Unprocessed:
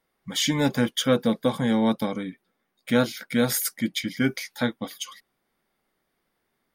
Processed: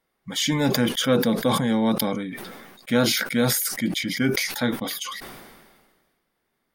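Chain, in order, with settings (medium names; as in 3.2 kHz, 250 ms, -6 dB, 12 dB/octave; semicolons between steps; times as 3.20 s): decay stretcher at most 37 dB/s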